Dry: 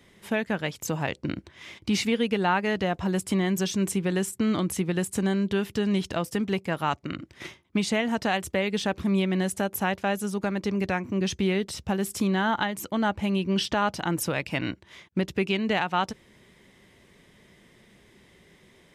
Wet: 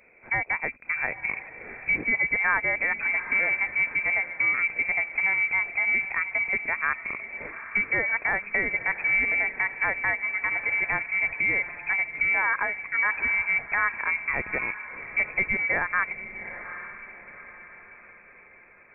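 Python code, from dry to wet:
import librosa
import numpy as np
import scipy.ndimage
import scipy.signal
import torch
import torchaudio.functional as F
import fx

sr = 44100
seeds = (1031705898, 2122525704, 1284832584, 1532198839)

y = fx.echo_diffused(x, sr, ms=813, feedback_pct=44, wet_db=-12)
y = fx.freq_invert(y, sr, carrier_hz=2500)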